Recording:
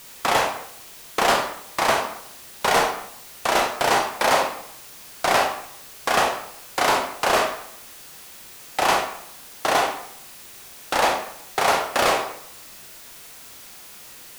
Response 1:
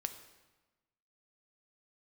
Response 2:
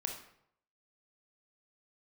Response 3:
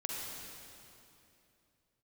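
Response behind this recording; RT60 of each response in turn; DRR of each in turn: 2; 1.2, 0.70, 2.8 seconds; 8.0, 2.0, −3.0 decibels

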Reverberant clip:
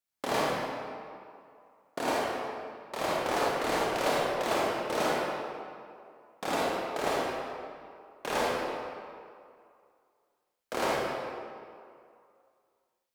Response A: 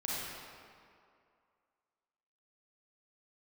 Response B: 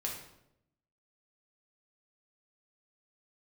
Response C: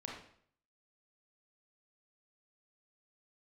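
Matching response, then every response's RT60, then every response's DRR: A; 2.4, 0.80, 0.60 seconds; −7.0, −2.0, −2.5 decibels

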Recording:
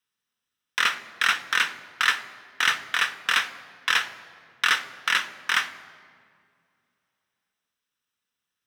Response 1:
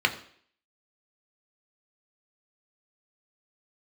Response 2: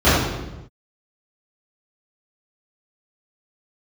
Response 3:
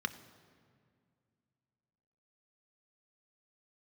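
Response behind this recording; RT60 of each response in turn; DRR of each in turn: 3; 0.55 s, non-exponential decay, 2.2 s; 4.0, −17.0, 10.5 decibels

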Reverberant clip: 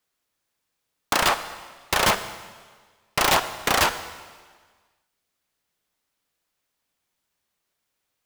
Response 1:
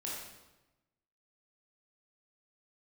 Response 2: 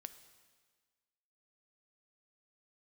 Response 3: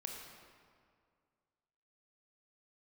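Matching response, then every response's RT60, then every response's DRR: 2; 1.0, 1.5, 2.1 seconds; −5.5, 10.5, 0.5 decibels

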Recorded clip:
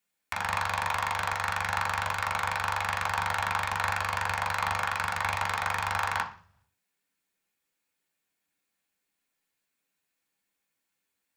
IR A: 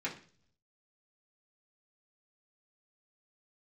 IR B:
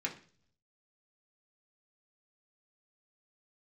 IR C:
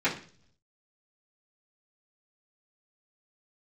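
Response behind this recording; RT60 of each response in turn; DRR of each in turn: B; 0.45, 0.45, 0.45 seconds; −6.5, −2.0, −12.0 decibels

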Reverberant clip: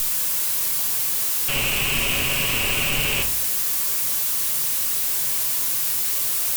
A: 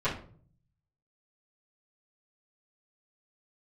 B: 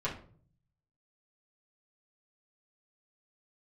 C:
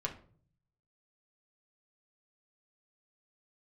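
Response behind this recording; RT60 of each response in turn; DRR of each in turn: C; 0.50, 0.50, 0.50 seconds; −15.0, −8.5, −0.5 decibels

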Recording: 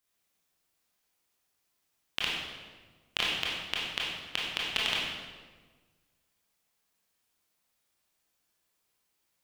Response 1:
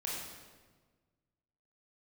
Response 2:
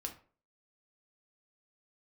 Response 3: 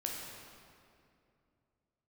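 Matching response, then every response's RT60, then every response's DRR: 1; 1.4, 0.45, 2.5 seconds; −5.0, 2.5, −1.5 decibels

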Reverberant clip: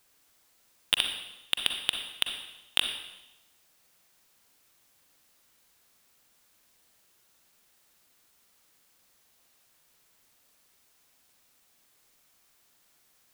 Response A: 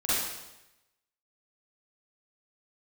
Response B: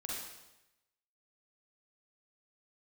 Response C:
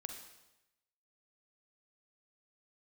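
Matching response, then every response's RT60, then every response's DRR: C; 0.95, 0.95, 0.95 seconds; −12.0, −4.5, 4.5 decibels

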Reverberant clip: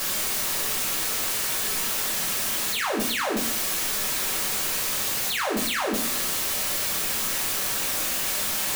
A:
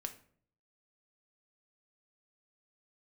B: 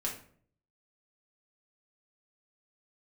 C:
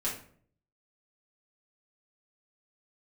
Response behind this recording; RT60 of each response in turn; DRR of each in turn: B; 0.55, 0.55, 0.55 seconds; 6.0, −3.0, −7.5 decibels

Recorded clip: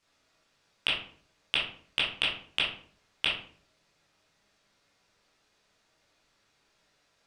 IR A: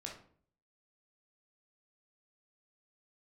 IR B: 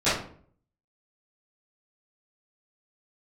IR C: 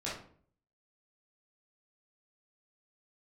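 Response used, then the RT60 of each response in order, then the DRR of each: C; 0.55, 0.50, 0.50 seconds; −1.0, −17.5, −8.0 decibels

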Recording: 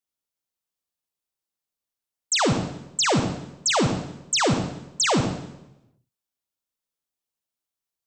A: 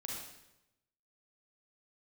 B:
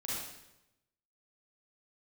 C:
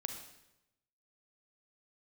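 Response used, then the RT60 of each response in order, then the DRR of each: C; 0.90, 0.90, 0.90 seconds; −2.5, −7.0, 5.0 decibels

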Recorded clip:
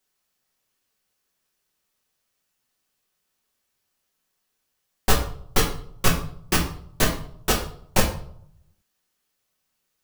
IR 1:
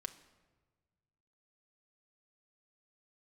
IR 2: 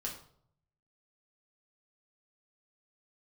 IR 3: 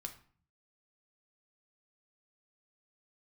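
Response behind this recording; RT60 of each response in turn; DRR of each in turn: 2; 1.4, 0.60, 0.45 seconds; 5.0, −2.5, 3.5 decibels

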